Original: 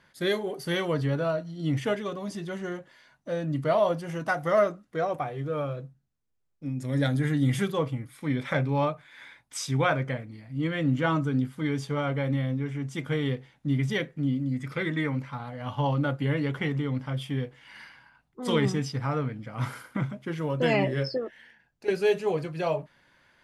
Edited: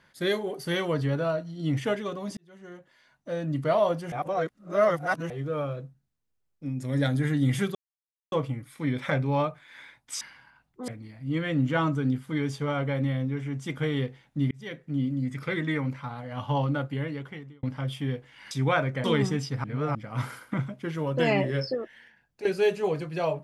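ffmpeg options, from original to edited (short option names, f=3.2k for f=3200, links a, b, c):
-filter_complex "[0:a]asplit=13[a][b][c][d][e][f][g][h][i][j][k][l][m];[a]atrim=end=2.37,asetpts=PTS-STARTPTS,afade=t=out:st=2.366:d=0.004:c=hsin[n];[b]atrim=start=2.37:end=4.122,asetpts=PTS-STARTPTS,afade=t=in:d=1.12[o];[c]atrim=start=4.118:end=5.302,asetpts=PTS-STARTPTS,areverse[p];[d]atrim=start=5.298:end=7.75,asetpts=PTS-STARTPTS,afade=t=out:st=2.448:d=0.004:c=hsin,apad=pad_dur=0.57[q];[e]atrim=start=7.75:end=9.642,asetpts=PTS-STARTPTS,afade=t=in:d=0.004:c=hsin[r];[f]atrim=start=17.798:end=18.472[s];[g]atrim=start=10.168:end=13.8,asetpts=PTS-STARTPTS,afade=t=out:st=3.628:d=0.004:c=hsin[t];[h]atrim=start=13.8:end=16.92,asetpts=PTS-STARTPTS,afade=t=in:d=0.53,afade=t=out:st=2.09:d=1.03[u];[i]atrim=start=16.92:end=17.802,asetpts=PTS-STARTPTS,afade=t=in:d=0.004:c=hsin[v];[j]atrim=start=9.638:end=10.172[w];[k]atrim=start=18.468:end=19.072[x];[l]atrim=start=19.068:end=19.382,asetpts=PTS-STARTPTS,areverse[y];[m]atrim=start=19.378[z];[n][o]concat=n=2:v=0:a=1[aa];[aa][p]acrossfade=d=0.004:c1=hsin:c2=hsin[ab];[q][r]concat=n=2:v=0:a=1[ac];[ab][ac]acrossfade=d=0.004:c1=hsin:c2=hsin[ad];[ad][s]acrossfade=d=0.004:c1=hsin:c2=hsin[ae];[t][u][v]concat=n=3:v=0:a=1[af];[ae][af]acrossfade=d=0.004:c1=hsin:c2=hsin[ag];[ag][w]acrossfade=d=0.004:c1=hsin:c2=hsin[ah];[ah][x]acrossfade=d=0.004:c1=hsin:c2=hsin[ai];[ai][y]acrossfade=d=0.004:c1=hsin:c2=hsin[aj];[aj][z]acrossfade=d=0.004:c1=hsin:c2=hsin"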